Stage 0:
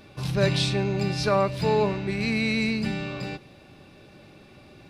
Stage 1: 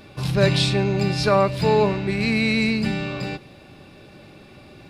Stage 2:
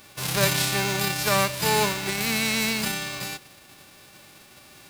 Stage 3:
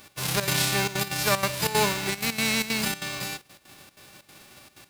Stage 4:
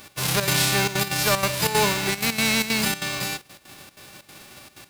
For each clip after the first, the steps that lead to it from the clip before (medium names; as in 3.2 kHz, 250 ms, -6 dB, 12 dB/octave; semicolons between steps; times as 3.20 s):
band-stop 6 kHz, Q 17; trim +4.5 dB
formants flattened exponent 0.3; trim -4.5 dB
trance gate "x.xxx.xxxxx.x.xx" 189 bpm -12 dB
saturation -17.5 dBFS, distortion -15 dB; trim +5 dB